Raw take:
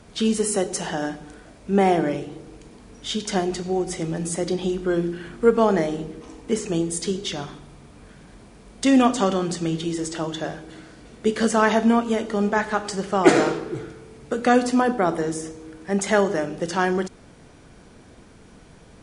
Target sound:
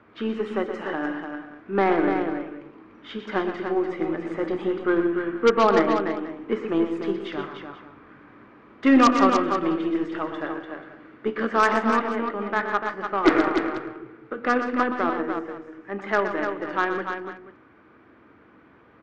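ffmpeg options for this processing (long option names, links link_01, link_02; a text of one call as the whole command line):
ffmpeg -i in.wav -filter_complex "[0:a]highpass=110,equalizer=frequency=170:width_type=q:width=4:gain=-9,equalizer=frequency=310:width_type=q:width=4:gain=8,equalizer=frequency=1200:width_type=q:width=4:gain=7,lowpass=frequency=2000:width=0.5412,lowpass=frequency=2000:width=1.3066,dynaudnorm=framelen=880:gausssize=7:maxgain=7.5dB,crystalizer=i=7.5:c=0,aeval=exprs='1.19*(cos(1*acos(clip(val(0)/1.19,-1,1)))-cos(1*PI/2))+0.335*(cos(3*acos(clip(val(0)/1.19,-1,1)))-cos(3*PI/2))+0.376*(cos(5*acos(clip(val(0)/1.19,-1,1)))-cos(5*PI/2))+0.188*(cos(7*acos(clip(val(0)/1.19,-1,1)))-cos(7*PI/2))+0.0188*(cos(8*acos(clip(val(0)/1.19,-1,1)))-cos(8*PI/2))':channel_layout=same,bandreject=frequency=710:width=18,asplit=2[link_01][link_02];[link_02]aecho=0:1:122|162|295|485:0.355|0.1|0.473|0.141[link_03];[link_01][link_03]amix=inputs=2:normalize=0,volume=-3.5dB" out.wav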